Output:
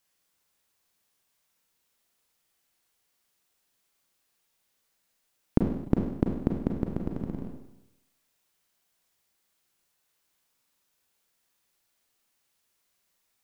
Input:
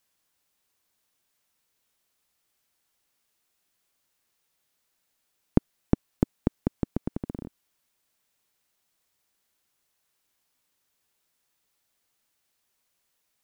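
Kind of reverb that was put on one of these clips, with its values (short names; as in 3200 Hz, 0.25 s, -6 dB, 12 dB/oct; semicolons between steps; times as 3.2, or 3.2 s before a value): Schroeder reverb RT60 0.87 s, combs from 33 ms, DRR 1.5 dB; gain -1.5 dB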